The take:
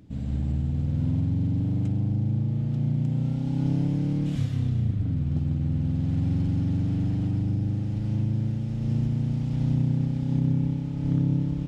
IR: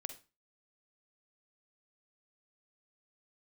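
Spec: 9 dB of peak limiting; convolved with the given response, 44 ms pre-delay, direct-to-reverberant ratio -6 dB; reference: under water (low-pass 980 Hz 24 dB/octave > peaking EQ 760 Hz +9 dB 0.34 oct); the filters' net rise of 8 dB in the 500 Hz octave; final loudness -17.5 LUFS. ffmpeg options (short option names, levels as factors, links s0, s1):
-filter_complex "[0:a]equalizer=f=500:t=o:g=9,alimiter=limit=0.1:level=0:latency=1,asplit=2[s0][s1];[1:a]atrim=start_sample=2205,adelay=44[s2];[s1][s2]afir=irnorm=-1:irlink=0,volume=2.66[s3];[s0][s3]amix=inputs=2:normalize=0,lowpass=f=980:w=0.5412,lowpass=f=980:w=1.3066,equalizer=f=760:t=o:w=0.34:g=9,volume=1.58"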